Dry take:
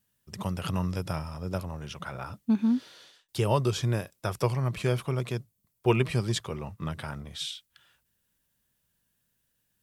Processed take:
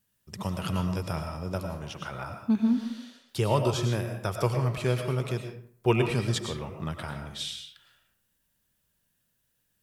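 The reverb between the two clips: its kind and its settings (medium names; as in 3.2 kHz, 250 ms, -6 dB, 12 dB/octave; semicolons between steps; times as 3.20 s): algorithmic reverb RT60 0.56 s, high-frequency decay 0.65×, pre-delay 70 ms, DRR 5 dB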